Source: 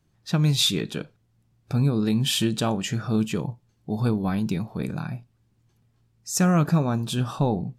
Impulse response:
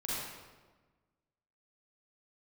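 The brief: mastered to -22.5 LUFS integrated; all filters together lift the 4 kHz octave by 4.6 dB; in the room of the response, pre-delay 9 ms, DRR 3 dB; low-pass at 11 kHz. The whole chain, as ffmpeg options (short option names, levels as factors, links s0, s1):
-filter_complex "[0:a]lowpass=11000,equalizer=f=4000:t=o:g=5.5,asplit=2[s0][s1];[1:a]atrim=start_sample=2205,adelay=9[s2];[s1][s2]afir=irnorm=-1:irlink=0,volume=0.447[s3];[s0][s3]amix=inputs=2:normalize=0,volume=0.891"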